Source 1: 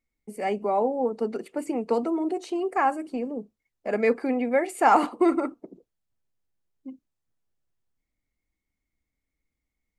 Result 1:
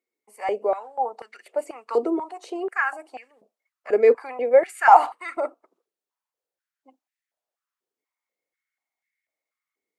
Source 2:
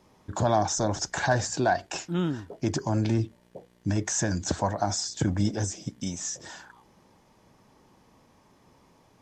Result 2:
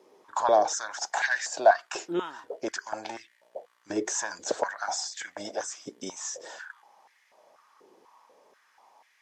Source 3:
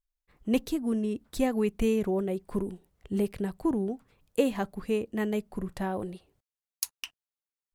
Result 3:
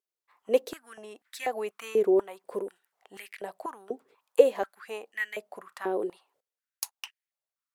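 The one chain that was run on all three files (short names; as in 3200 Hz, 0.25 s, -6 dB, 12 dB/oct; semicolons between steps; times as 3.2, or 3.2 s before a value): stepped high-pass 4.1 Hz 400–1900 Hz; gain -2.5 dB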